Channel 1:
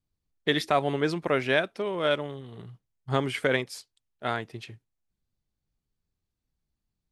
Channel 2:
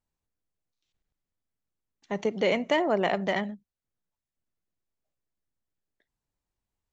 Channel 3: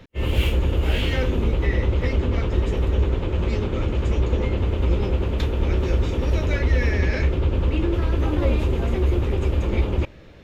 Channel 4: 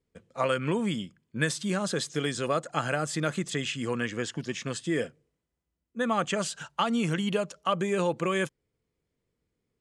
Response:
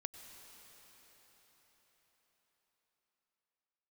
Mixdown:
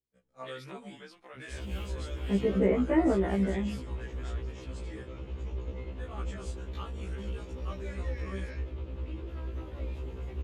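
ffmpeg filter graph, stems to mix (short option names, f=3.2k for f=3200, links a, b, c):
-filter_complex "[0:a]highpass=f=1.2k:p=1,acompressor=threshold=-33dB:ratio=3,volume=-11dB,asplit=2[a][b];[1:a]lowpass=f=1.9k:w=0.5412,lowpass=f=1.9k:w=1.3066,lowshelf=f=480:t=q:w=1.5:g=9,adelay=200,volume=-2.5dB[c];[2:a]adelay=1350,volume=-16.5dB[d];[3:a]flanger=delay=16:depth=5:speed=0.79,volume=-12.5dB[e];[b]apad=whole_len=314230[f];[c][f]sidechaincompress=threshold=-49dB:ratio=8:attack=34:release=303[g];[a][g][d][e]amix=inputs=4:normalize=0,afftfilt=real='re*1.73*eq(mod(b,3),0)':imag='im*1.73*eq(mod(b,3),0)':win_size=2048:overlap=0.75"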